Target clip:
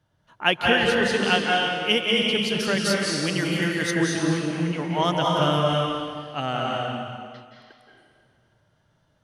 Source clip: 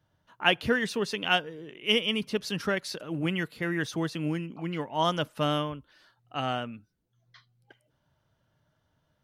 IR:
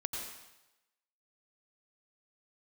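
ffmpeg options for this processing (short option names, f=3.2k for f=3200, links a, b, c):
-filter_complex "[0:a]asettb=1/sr,asplit=3[a][b][c];[a]atrim=end=2.594[d];[b]atrim=start=2.59:end=3.91,asetpts=PTS-STARTPTS,afade=t=in:d=0.004:c=qsin,afade=t=out:st=1.316:d=0.004:c=qsin,bass=f=250:g=-2,treble=f=4k:g=9[e];[c]atrim=start=3.906[f];[d][e]acrossfade=d=0.004:c1=hsin:c2=qsin[g];[g][f]acrossfade=d=0.004:c1=qsin:c2=hsin[h];[1:a]atrim=start_sample=2205,asetrate=22050,aresample=44100[i];[h][i]afir=irnorm=-1:irlink=0"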